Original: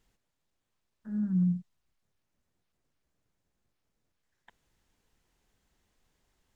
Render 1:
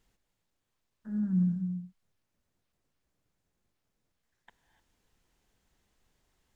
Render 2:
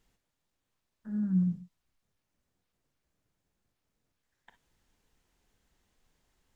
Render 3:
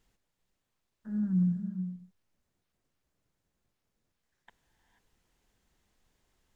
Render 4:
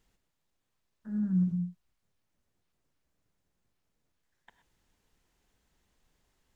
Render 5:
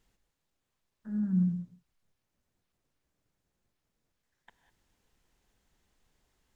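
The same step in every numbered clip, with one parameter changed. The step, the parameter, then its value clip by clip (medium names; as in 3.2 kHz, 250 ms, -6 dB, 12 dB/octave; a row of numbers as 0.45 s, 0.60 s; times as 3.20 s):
gated-style reverb, gate: 320 ms, 80 ms, 510 ms, 140 ms, 220 ms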